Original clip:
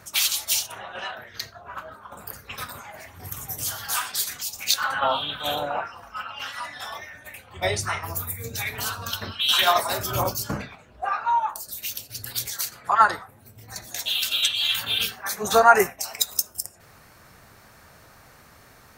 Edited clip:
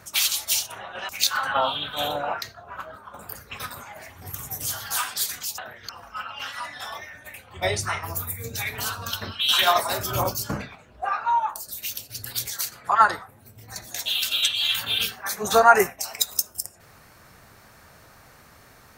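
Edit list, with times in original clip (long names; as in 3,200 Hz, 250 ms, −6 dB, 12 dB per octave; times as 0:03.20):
0:01.09–0:01.40: swap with 0:04.56–0:05.89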